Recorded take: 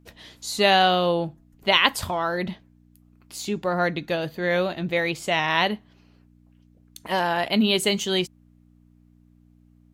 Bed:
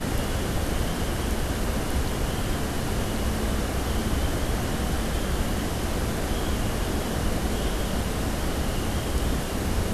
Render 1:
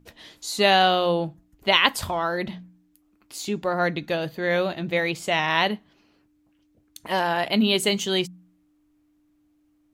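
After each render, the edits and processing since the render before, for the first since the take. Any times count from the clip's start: de-hum 60 Hz, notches 4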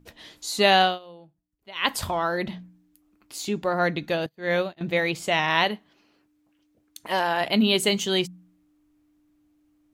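0.81–1.93 s: dip -23 dB, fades 0.18 s; 4.26–4.81 s: upward expansion 2.5:1, over -40 dBFS; 5.64–7.41 s: bass shelf 160 Hz -11 dB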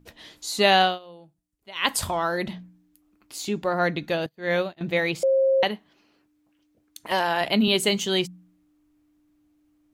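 1.12–2.53 s: peaking EQ 8.9 kHz +6.5 dB 1.1 oct; 5.23–5.63 s: bleep 535 Hz -16.5 dBFS; 7.11–7.68 s: three bands compressed up and down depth 40%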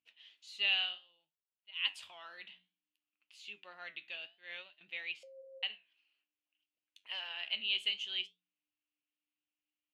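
band-pass filter 2.8 kHz, Q 6; flange 0.59 Hz, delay 7.9 ms, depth 9.4 ms, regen +72%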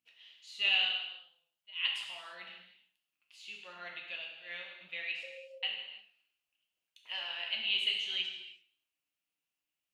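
gated-style reverb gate 370 ms falling, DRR -0.5 dB; modulated delay 105 ms, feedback 31%, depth 106 cents, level -19 dB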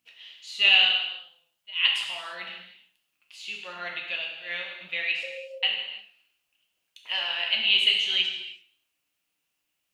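trim +10.5 dB

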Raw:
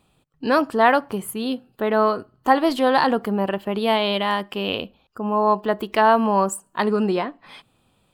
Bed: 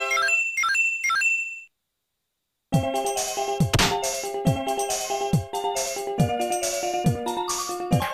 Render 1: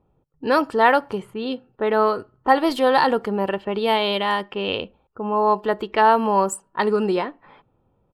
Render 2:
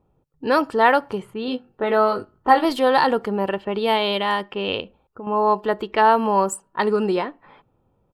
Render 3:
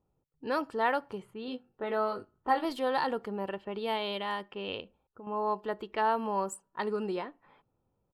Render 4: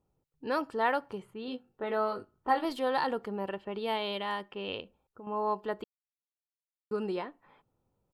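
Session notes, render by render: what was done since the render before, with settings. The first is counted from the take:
level-controlled noise filter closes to 800 Hz, open at -16.5 dBFS; comb 2.2 ms, depth 31%
1.46–2.65 s: doubling 20 ms -4.5 dB; 4.80–5.27 s: compression, threshold -30 dBFS
trim -12.5 dB
5.84–6.91 s: mute

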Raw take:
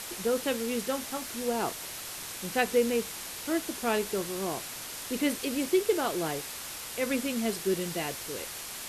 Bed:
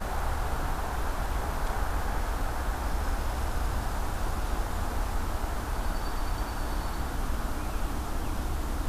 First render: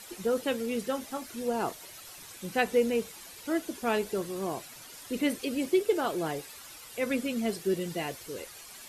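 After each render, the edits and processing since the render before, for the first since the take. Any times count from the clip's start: noise reduction 11 dB, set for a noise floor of -40 dBFS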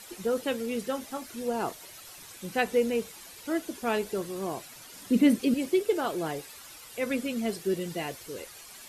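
4.95–5.54 s: peaking EQ 210 Hz +14 dB 1.1 oct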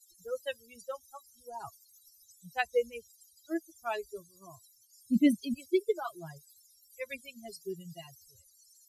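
expander on every frequency bin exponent 3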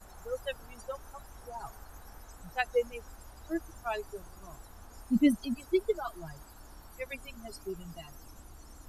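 add bed -20.5 dB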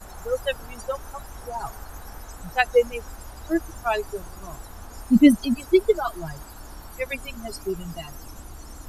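trim +10.5 dB

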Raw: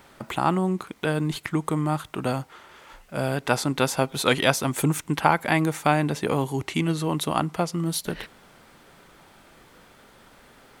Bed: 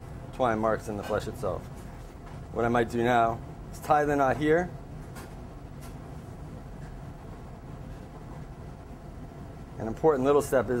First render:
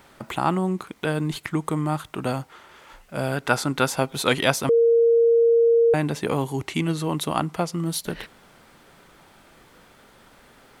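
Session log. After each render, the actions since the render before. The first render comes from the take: 3.32–3.89 s: peaking EQ 1.4 kHz +6.5 dB 0.24 oct; 4.69–5.94 s: bleep 464 Hz -13.5 dBFS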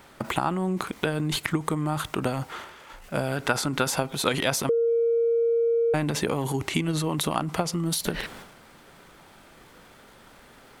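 transient shaper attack +6 dB, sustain +10 dB; compression 3:1, threshold -23 dBFS, peak gain reduction 10.5 dB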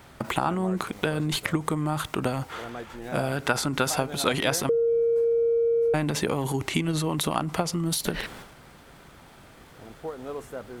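add bed -13 dB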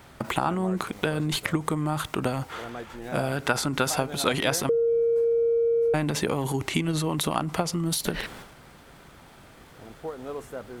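no audible change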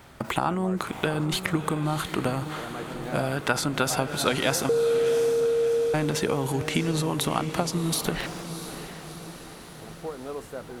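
echo that smears into a reverb 678 ms, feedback 57%, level -10.5 dB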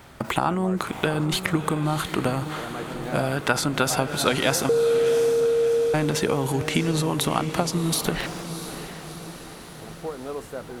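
trim +2.5 dB

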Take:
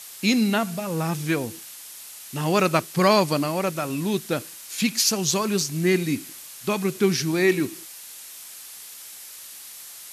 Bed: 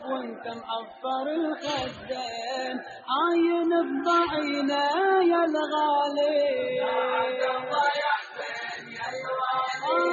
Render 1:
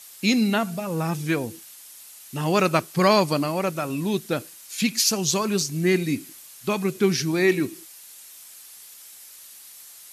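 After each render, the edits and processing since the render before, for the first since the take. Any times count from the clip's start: noise reduction 6 dB, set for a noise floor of -42 dBFS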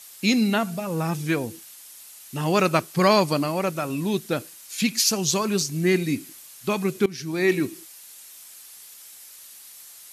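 7.06–7.54 s: fade in, from -20.5 dB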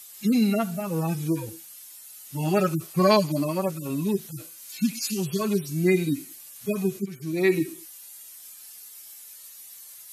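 harmonic-percussive separation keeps harmonic; treble shelf 9.4 kHz +8 dB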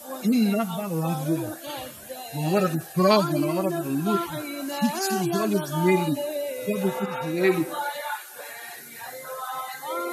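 add bed -6 dB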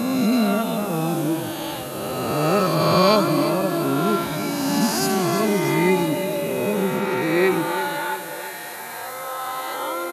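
reverse spectral sustain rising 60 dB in 2.42 s; feedback delay 340 ms, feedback 48%, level -11 dB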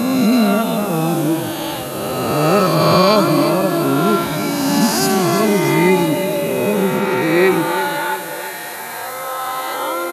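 trim +5.5 dB; peak limiter -2 dBFS, peak gain reduction 3 dB

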